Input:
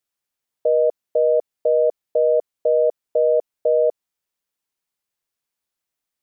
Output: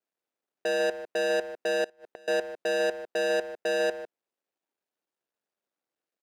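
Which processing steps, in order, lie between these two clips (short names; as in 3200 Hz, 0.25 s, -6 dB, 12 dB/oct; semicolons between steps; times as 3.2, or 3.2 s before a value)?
median filter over 41 samples; soft clip -31 dBFS, distortion -6 dB; HPF 290 Hz 12 dB/oct; low shelf 410 Hz -2.5 dB; speakerphone echo 0.15 s, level -8 dB; 1.84–2.28 flipped gate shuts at -39 dBFS, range -26 dB; gain +7 dB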